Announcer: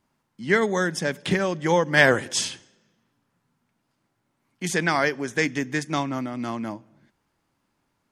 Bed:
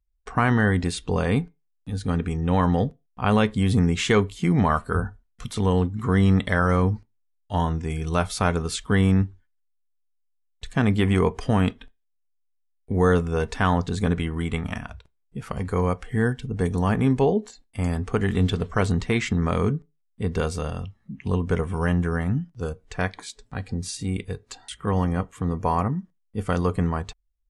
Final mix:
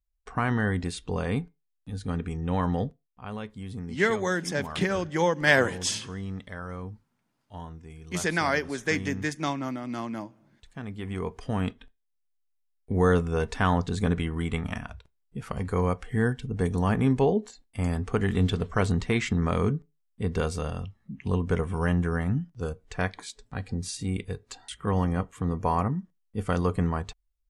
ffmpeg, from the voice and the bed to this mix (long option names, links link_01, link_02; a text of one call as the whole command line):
ffmpeg -i stem1.wav -i stem2.wav -filter_complex "[0:a]adelay=3500,volume=-3.5dB[link_01];[1:a]volume=8.5dB,afade=type=out:start_time=2.86:duration=0.38:silence=0.281838,afade=type=in:start_time=10.94:duration=1.43:silence=0.188365[link_02];[link_01][link_02]amix=inputs=2:normalize=0" out.wav